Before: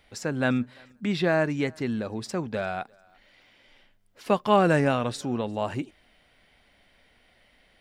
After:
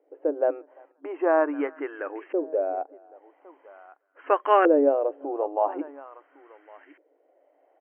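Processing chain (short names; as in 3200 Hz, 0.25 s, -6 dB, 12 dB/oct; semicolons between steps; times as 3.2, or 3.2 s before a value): echo 1.109 s -21 dB; LFO low-pass saw up 0.43 Hz 460–1900 Hz; FFT band-pass 270–3200 Hz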